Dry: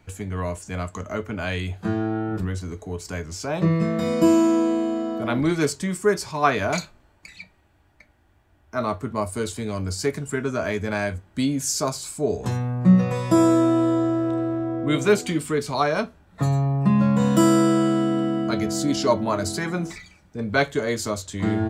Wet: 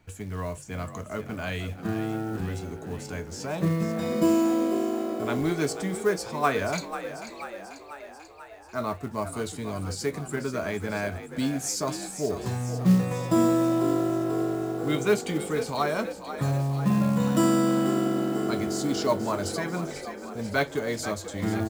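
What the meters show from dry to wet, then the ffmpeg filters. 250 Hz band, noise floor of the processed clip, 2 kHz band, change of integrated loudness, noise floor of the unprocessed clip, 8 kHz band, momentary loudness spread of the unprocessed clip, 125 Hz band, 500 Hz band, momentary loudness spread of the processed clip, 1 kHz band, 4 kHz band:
-4.5 dB, -44 dBFS, -4.5 dB, -4.5 dB, -59 dBFS, -4.0 dB, 13 LU, -5.0 dB, -4.0 dB, 13 LU, -4.0 dB, -4.0 dB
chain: -filter_complex "[0:a]acrusher=bits=6:mode=log:mix=0:aa=0.000001,asplit=9[a][b][c][d][e][f][g][h][i];[b]adelay=490,afreqshift=49,volume=-11dB[j];[c]adelay=980,afreqshift=98,volume=-15dB[k];[d]adelay=1470,afreqshift=147,volume=-19dB[l];[e]adelay=1960,afreqshift=196,volume=-23dB[m];[f]adelay=2450,afreqshift=245,volume=-27.1dB[n];[g]adelay=2940,afreqshift=294,volume=-31.1dB[o];[h]adelay=3430,afreqshift=343,volume=-35.1dB[p];[i]adelay=3920,afreqshift=392,volume=-39.1dB[q];[a][j][k][l][m][n][o][p][q]amix=inputs=9:normalize=0,volume=-5dB"

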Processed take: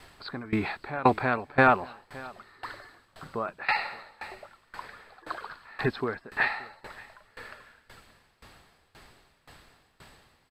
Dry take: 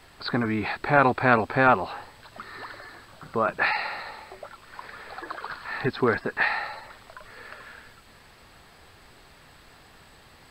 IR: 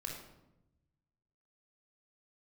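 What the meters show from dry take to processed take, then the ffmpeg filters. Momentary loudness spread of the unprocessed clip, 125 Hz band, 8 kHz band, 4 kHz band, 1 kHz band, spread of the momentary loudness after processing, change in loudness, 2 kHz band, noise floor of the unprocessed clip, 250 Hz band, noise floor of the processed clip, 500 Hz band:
23 LU, -3.5 dB, n/a, -4.0 dB, -3.5 dB, 23 LU, -3.5 dB, -4.0 dB, -53 dBFS, -3.5 dB, -67 dBFS, -4.5 dB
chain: -af "aecho=1:1:577:0.1,aresample=32000,aresample=44100,aeval=exprs='val(0)*pow(10,-21*if(lt(mod(1.9*n/s,1),2*abs(1.9)/1000),1-mod(1.9*n/s,1)/(2*abs(1.9)/1000),(mod(1.9*n/s,1)-2*abs(1.9)/1000)/(1-2*abs(1.9)/1000))/20)':c=same,volume=2.5dB"

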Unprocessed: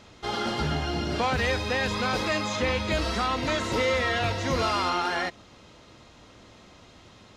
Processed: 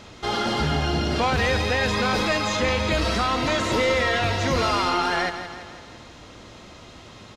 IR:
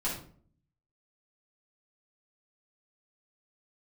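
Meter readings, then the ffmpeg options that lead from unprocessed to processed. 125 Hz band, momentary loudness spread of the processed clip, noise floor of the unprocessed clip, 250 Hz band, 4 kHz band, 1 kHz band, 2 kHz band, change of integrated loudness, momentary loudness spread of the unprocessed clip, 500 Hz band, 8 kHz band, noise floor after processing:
+4.5 dB, 7 LU, -53 dBFS, +4.0 dB, +4.5 dB, +4.0 dB, +4.0 dB, +4.0 dB, 4 LU, +4.0 dB, +4.5 dB, -45 dBFS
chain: -filter_complex "[0:a]asplit=2[a][b];[b]alimiter=level_in=1.5dB:limit=-24dB:level=0:latency=1,volume=-1.5dB,volume=1dB[c];[a][c]amix=inputs=2:normalize=0,aeval=exprs='0.282*(cos(1*acos(clip(val(0)/0.282,-1,1)))-cos(1*PI/2))+0.00631*(cos(4*acos(clip(val(0)/0.282,-1,1)))-cos(4*PI/2))+0.00316*(cos(5*acos(clip(val(0)/0.282,-1,1)))-cos(5*PI/2))':c=same,aecho=1:1:165|330|495|660|825|990:0.299|0.164|0.0903|0.0497|0.0273|0.015"

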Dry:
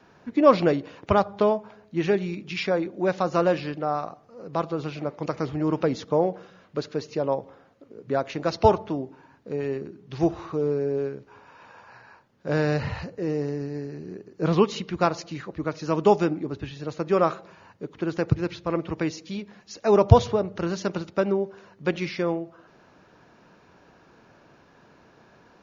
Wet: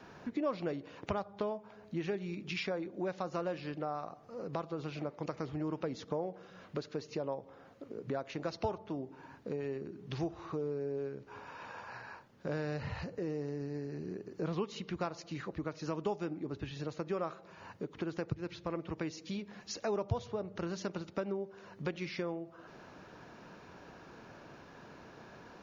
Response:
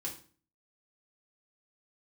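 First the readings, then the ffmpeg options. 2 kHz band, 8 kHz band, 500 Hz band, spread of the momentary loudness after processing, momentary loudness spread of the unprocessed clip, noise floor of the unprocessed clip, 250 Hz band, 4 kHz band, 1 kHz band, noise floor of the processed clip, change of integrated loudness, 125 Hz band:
-10.5 dB, n/a, -14.0 dB, 16 LU, 14 LU, -57 dBFS, -12.0 dB, -10.0 dB, -15.0 dB, -57 dBFS, -14.0 dB, -13.5 dB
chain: -af "acompressor=threshold=-41dB:ratio=3,volume=2dB"

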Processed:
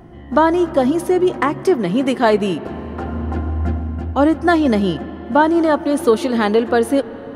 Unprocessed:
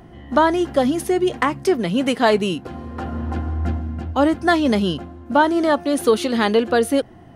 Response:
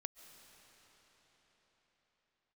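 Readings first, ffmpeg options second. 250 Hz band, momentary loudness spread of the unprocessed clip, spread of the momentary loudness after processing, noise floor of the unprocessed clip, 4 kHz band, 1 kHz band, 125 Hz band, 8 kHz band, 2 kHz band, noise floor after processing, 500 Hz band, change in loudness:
+3.0 dB, 9 LU, 9 LU, -43 dBFS, -2.5 dB, +2.0 dB, +2.5 dB, n/a, +0.5 dB, -33 dBFS, +2.5 dB, +2.5 dB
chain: -filter_complex "[0:a]asplit=2[a][b];[b]equalizer=f=340:t=o:w=0.28:g=5[c];[1:a]atrim=start_sample=2205,lowpass=2.3k[d];[c][d]afir=irnorm=-1:irlink=0,volume=0.5dB[e];[a][e]amix=inputs=2:normalize=0,volume=-2dB"

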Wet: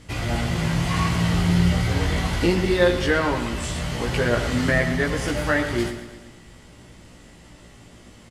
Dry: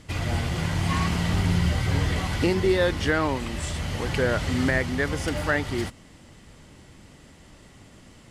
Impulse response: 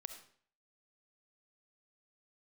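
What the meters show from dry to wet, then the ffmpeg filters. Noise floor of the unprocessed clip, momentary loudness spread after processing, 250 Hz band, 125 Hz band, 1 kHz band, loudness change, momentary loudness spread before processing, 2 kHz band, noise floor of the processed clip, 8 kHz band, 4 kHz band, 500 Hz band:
-51 dBFS, 8 LU, +3.5 dB, +2.5 dB, +3.0 dB, +3.0 dB, 7 LU, +3.0 dB, -48 dBFS, +3.0 dB, +3.0 dB, +3.0 dB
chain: -filter_complex "[0:a]aecho=1:1:115|230|345|460|575|690:0.251|0.146|0.0845|0.049|0.0284|0.0165,asplit=2[a][b];[1:a]atrim=start_sample=2205,adelay=17[c];[b][c]afir=irnorm=-1:irlink=0,volume=3dB[d];[a][d]amix=inputs=2:normalize=0"

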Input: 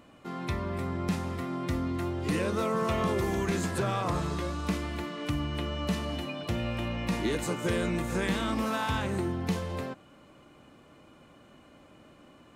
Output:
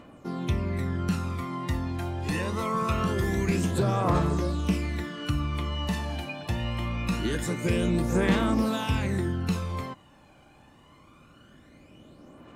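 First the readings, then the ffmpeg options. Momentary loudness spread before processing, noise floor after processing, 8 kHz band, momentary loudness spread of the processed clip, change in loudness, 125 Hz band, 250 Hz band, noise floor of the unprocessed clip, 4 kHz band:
6 LU, -56 dBFS, +1.0 dB, 8 LU, +3.0 dB, +5.0 dB, +3.0 dB, -56 dBFS, +1.0 dB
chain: -af "aphaser=in_gain=1:out_gain=1:delay=1.3:decay=0.55:speed=0.24:type=triangular"

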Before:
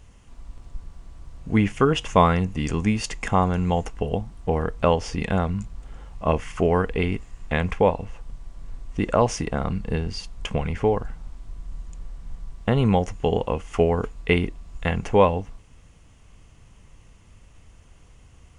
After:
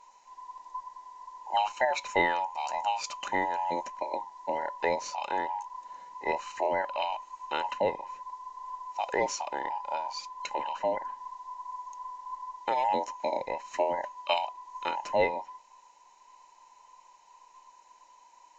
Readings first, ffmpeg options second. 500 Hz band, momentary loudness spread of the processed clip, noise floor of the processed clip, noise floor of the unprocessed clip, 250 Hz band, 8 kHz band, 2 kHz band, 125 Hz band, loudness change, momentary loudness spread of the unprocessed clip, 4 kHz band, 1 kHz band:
-9.0 dB, 14 LU, -59 dBFS, -52 dBFS, -19.0 dB, -4.5 dB, -3.0 dB, -30.0 dB, -8.5 dB, 22 LU, -4.0 dB, -2.0 dB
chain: -af "afftfilt=real='real(if(between(b,1,1008),(2*floor((b-1)/48)+1)*48-b,b),0)':imag='imag(if(between(b,1,1008),(2*floor((b-1)/48)+1)*48-b,b),0)*if(between(b,1,1008),-1,1)':win_size=2048:overlap=0.75,bass=f=250:g=-13,treble=f=4k:g=9,aresample=16000,aresample=44100,adynamicequalizer=threshold=0.0112:dfrequency=4000:dqfactor=0.7:tfrequency=4000:tqfactor=0.7:attack=5:release=100:ratio=0.375:range=3:mode=cutabove:tftype=highshelf,volume=-8dB"

